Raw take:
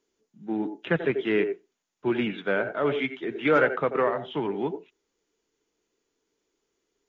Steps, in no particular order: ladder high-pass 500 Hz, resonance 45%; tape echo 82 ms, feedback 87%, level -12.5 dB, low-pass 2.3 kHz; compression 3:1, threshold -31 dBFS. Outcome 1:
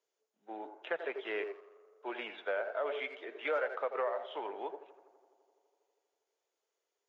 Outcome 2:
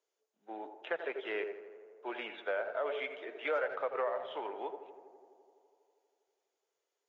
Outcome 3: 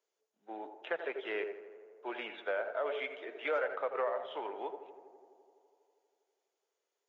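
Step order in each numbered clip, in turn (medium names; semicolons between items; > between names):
tape echo > ladder high-pass > compression; ladder high-pass > tape echo > compression; ladder high-pass > compression > tape echo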